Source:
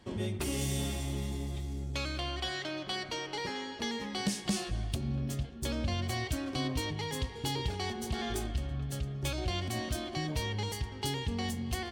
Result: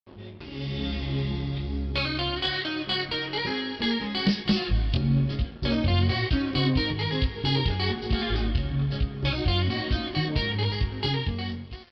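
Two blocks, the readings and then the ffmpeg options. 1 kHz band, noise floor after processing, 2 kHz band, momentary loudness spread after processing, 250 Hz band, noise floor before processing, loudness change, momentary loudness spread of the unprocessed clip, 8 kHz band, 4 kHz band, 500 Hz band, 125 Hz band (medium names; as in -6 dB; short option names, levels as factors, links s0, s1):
+4.5 dB, -41 dBFS, +8.5 dB, 6 LU, +8.5 dB, -44 dBFS, +8.5 dB, 3 LU, under -15 dB, +9.0 dB, +6.0 dB, +9.0 dB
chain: -af "adynamicequalizer=threshold=0.002:dfrequency=720:dqfactor=1.3:tfrequency=720:tqfactor=1.3:attack=5:release=100:ratio=0.375:range=3.5:mode=cutabove:tftype=bell,dynaudnorm=f=230:g=7:m=6.31,flanger=delay=18.5:depth=4.6:speed=1.1,aresample=11025,aeval=exprs='sgn(val(0))*max(abs(val(0))-0.00596,0)':c=same,aresample=44100,aeval=exprs='0.376*(cos(1*acos(clip(val(0)/0.376,-1,1)))-cos(1*PI/2))+0.0168*(cos(2*acos(clip(val(0)/0.376,-1,1)))-cos(2*PI/2))':c=same,volume=0.75"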